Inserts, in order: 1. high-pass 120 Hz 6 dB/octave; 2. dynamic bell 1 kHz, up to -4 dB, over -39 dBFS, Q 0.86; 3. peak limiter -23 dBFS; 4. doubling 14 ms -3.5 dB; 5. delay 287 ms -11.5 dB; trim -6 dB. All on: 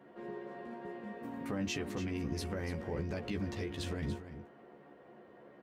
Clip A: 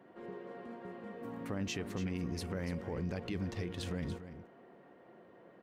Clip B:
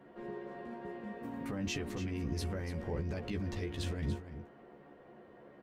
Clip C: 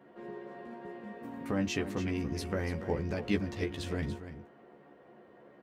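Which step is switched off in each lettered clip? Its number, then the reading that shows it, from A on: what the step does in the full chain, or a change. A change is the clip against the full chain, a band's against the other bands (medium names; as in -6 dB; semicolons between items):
4, 125 Hz band +1.5 dB; 1, 125 Hz band +3.0 dB; 3, crest factor change +5.0 dB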